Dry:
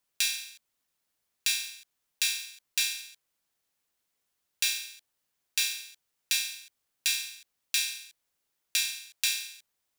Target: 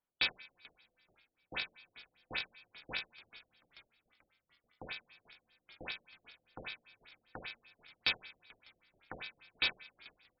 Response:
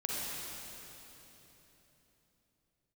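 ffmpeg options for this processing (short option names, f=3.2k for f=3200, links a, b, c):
-filter_complex "[0:a]asetrate=42336,aresample=44100,asplit=2[a][b];[b]acrusher=bits=3:mix=0:aa=0.5,volume=-7dB[c];[a][c]amix=inputs=2:normalize=0,adynamicsmooth=sensitivity=2:basefreq=2.1k,asplit=6[d][e][f][g][h][i];[e]adelay=437,afreqshift=-71,volume=-23dB[j];[f]adelay=874,afreqshift=-142,volume=-26.9dB[k];[g]adelay=1311,afreqshift=-213,volume=-30.8dB[l];[h]adelay=1748,afreqshift=-284,volume=-34.6dB[m];[i]adelay=2185,afreqshift=-355,volume=-38.5dB[n];[d][j][k][l][m][n]amix=inputs=6:normalize=0,asplit=2[o][p];[1:a]atrim=start_sample=2205[q];[p][q]afir=irnorm=-1:irlink=0,volume=-26.5dB[r];[o][r]amix=inputs=2:normalize=0,afftfilt=real='re*lt(b*sr/1024,680*pow(5500/680,0.5+0.5*sin(2*PI*5.1*pts/sr)))':imag='im*lt(b*sr/1024,680*pow(5500/680,0.5+0.5*sin(2*PI*5.1*pts/sr)))':win_size=1024:overlap=0.75,volume=-4dB"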